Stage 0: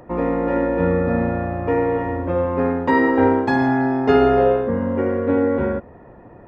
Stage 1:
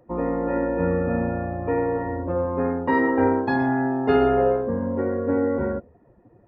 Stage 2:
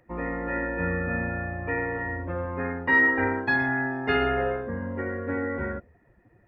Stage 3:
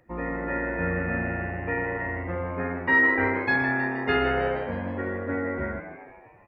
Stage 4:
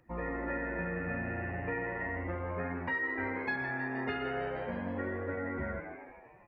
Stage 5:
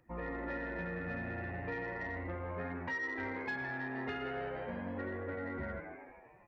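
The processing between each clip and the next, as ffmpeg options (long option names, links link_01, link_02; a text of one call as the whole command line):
ffmpeg -i in.wav -af "afftdn=noise_reduction=14:noise_floor=-32,volume=-4dB" out.wav
ffmpeg -i in.wav -af "equalizer=frequency=125:width_type=o:width=1:gain=-3,equalizer=frequency=250:width_type=o:width=1:gain=-6,equalizer=frequency=500:width_type=o:width=1:gain=-7,equalizer=frequency=1000:width_type=o:width=1:gain=-6,equalizer=frequency=2000:width_type=o:width=1:gain=11" out.wav
ffmpeg -i in.wav -filter_complex "[0:a]asplit=7[link_01][link_02][link_03][link_04][link_05][link_06][link_07];[link_02]adelay=158,afreqshift=96,volume=-11dB[link_08];[link_03]adelay=316,afreqshift=192,volume=-16.2dB[link_09];[link_04]adelay=474,afreqshift=288,volume=-21.4dB[link_10];[link_05]adelay=632,afreqshift=384,volume=-26.6dB[link_11];[link_06]adelay=790,afreqshift=480,volume=-31.8dB[link_12];[link_07]adelay=948,afreqshift=576,volume=-37dB[link_13];[link_01][link_08][link_09][link_10][link_11][link_12][link_13]amix=inputs=7:normalize=0" out.wav
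ffmpeg -i in.wav -af "acompressor=threshold=-28dB:ratio=6,flanger=delay=0.7:depth=7.7:regen=-44:speed=0.36:shape=triangular" out.wav
ffmpeg -i in.wav -af "asoftclip=type=tanh:threshold=-26.5dB,volume=-3dB" out.wav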